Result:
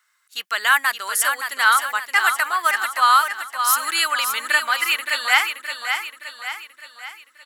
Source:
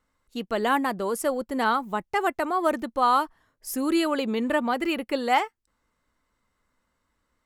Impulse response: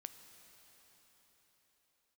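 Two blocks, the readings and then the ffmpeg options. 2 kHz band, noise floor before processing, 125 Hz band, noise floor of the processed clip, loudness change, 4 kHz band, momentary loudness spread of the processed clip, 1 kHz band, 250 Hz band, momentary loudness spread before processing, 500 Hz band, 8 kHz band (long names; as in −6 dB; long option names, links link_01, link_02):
+14.0 dB, −76 dBFS, can't be measured, −61 dBFS, +6.5 dB, +13.0 dB, 16 LU, +5.0 dB, below −20 dB, 9 LU, −11.0 dB, +15.5 dB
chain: -filter_complex "[0:a]highpass=frequency=1500:width_type=q:width=2.3,highshelf=frequency=2900:gain=12,asplit=2[link_01][link_02];[link_02]aecho=0:1:570|1140|1710|2280|2850|3420:0.447|0.219|0.107|0.0526|0.0258|0.0126[link_03];[link_01][link_03]amix=inputs=2:normalize=0,volume=3.5dB"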